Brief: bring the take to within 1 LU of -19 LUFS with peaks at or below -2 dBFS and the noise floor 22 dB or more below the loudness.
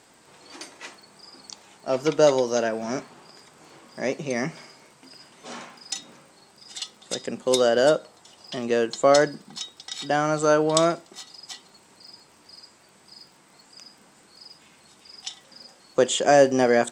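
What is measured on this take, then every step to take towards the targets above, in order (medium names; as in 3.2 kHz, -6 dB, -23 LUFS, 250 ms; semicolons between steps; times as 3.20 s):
tick rate 27 per s; loudness -23.0 LUFS; peak level -4.0 dBFS; loudness target -19.0 LUFS
-> de-click; trim +4 dB; peak limiter -2 dBFS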